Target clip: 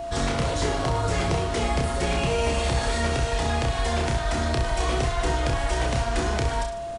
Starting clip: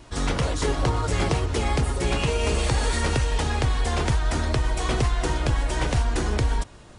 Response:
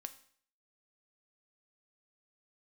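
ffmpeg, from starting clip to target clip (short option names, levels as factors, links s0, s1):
-filter_complex "[0:a]acrossover=split=570|7300[s0][s1][s2];[s0]acompressor=threshold=0.0316:ratio=4[s3];[s1]acompressor=threshold=0.0178:ratio=4[s4];[s2]acompressor=threshold=0.00224:ratio=4[s5];[s3][s4][s5]amix=inputs=3:normalize=0,aecho=1:1:30|64.5|104.2|149.8|202.3:0.631|0.398|0.251|0.158|0.1,aeval=exprs='val(0)+0.02*sin(2*PI*680*n/s)':c=same,volume=1.58"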